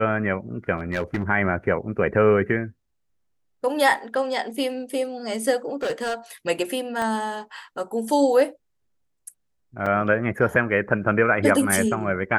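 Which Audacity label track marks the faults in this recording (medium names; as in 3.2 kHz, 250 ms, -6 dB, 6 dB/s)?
0.780000	1.230000	clipped -19 dBFS
5.830000	6.150000	clipped -22 dBFS
7.020000	7.020000	pop -15 dBFS
9.860000	9.860000	dropout 4.3 ms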